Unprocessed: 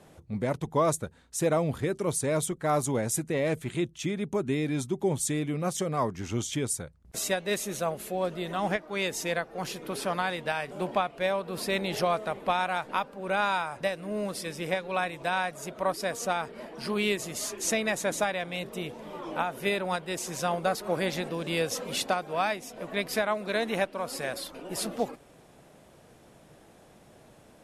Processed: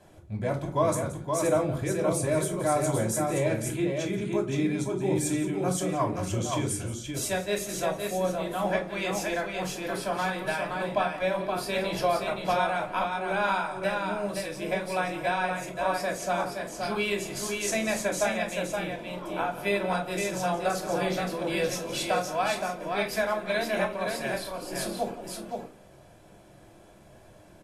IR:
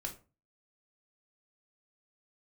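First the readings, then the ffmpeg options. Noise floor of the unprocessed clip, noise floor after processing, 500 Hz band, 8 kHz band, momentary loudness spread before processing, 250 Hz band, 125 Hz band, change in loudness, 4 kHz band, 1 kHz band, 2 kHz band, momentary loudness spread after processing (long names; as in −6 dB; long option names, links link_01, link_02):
−56 dBFS, −53 dBFS, +2.0 dB, 0.0 dB, 7 LU, +1.5 dB, +2.0 dB, +1.5 dB, −0.5 dB, +1.5 dB, +1.0 dB, 6 LU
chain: -filter_complex "[0:a]aecho=1:1:174|521:0.178|0.596[link_01];[1:a]atrim=start_sample=2205[link_02];[link_01][link_02]afir=irnorm=-1:irlink=0"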